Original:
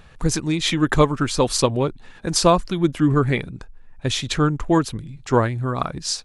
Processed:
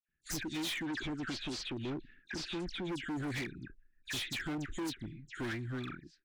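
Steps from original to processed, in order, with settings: fade out at the end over 0.73 s; expander -31 dBFS; level-controlled noise filter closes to 1.4 kHz, open at -12.5 dBFS; elliptic band-stop 340–1600 Hz, stop band 40 dB; tone controls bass -13 dB, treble +2 dB; compression 2.5:1, threshold -31 dBFS, peak gain reduction 9 dB; phase dispersion lows, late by 87 ms, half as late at 2.2 kHz; overload inside the chain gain 35 dB; 0.83–2.89 s: distance through air 100 m

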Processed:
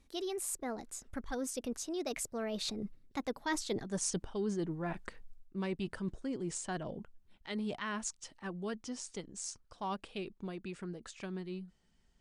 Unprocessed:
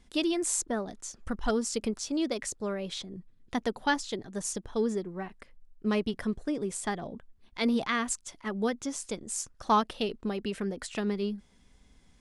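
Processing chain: Doppler pass-by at 3.87 s, 37 m/s, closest 11 m; reverse; compression 5:1, threshold -52 dBFS, peak gain reduction 22.5 dB; reverse; trim +17 dB

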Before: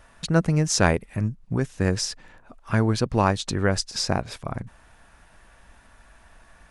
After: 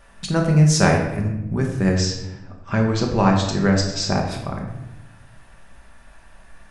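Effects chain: 1.94–4.17 s: brick-wall FIR low-pass 8.2 kHz; simulated room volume 360 m³, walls mixed, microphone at 1.2 m

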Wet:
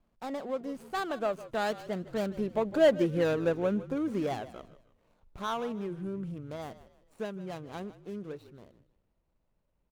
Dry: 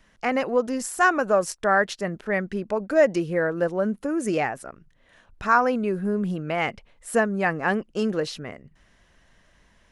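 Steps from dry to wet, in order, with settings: median filter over 25 samples; Doppler pass-by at 2.99 s, 22 m/s, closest 18 m; in parallel at -2.5 dB: compression, threshold -36 dBFS, peak gain reduction 19.5 dB; on the sum: frequency-shifting echo 156 ms, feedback 37%, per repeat -49 Hz, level -16 dB; trim -3.5 dB

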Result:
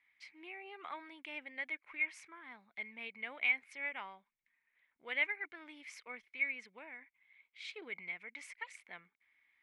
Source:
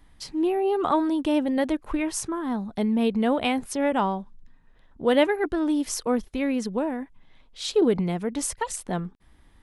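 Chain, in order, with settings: band-pass filter 2.2 kHz, Q 15; trim +7 dB

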